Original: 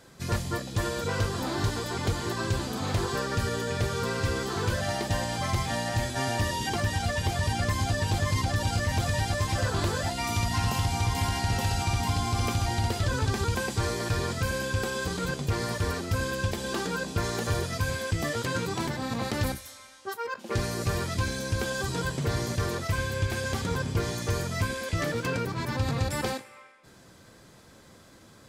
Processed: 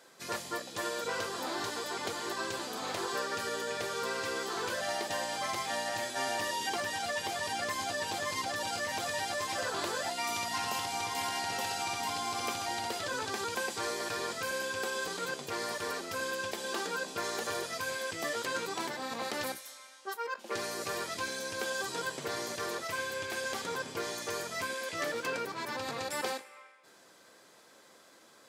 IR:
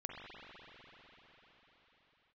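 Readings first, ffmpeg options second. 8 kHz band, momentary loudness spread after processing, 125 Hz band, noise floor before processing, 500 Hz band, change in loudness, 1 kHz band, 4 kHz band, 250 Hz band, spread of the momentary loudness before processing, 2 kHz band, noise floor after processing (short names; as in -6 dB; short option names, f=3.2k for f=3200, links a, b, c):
-2.5 dB, 3 LU, -24.5 dB, -53 dBFS, -4.0 dB, -5.5 dB, -2.5 dB, -2.5 dB, -11.0 dB, 3 LU, -2.5 dB, -59 dBFS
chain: -af "highpass=410,volume=-2.5dB"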